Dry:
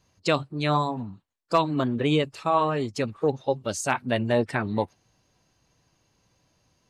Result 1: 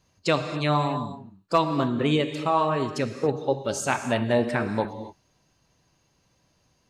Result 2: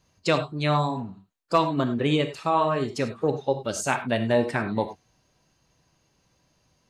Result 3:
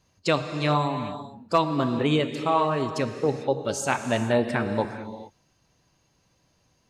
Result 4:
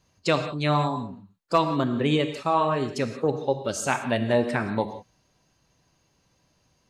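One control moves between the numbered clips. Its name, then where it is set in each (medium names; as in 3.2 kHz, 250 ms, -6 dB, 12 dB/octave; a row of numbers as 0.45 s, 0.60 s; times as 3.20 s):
gated-style reverb, gate: 300 ms, 120 ms, 470 ms, 200 ms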